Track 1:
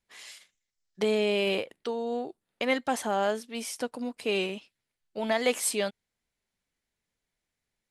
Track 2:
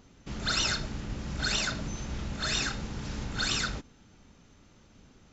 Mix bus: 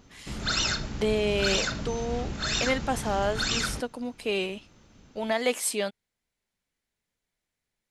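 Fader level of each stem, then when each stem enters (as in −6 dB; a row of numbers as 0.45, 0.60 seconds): 0.0, +1.5 decibels; 0.00, 0.00 seconds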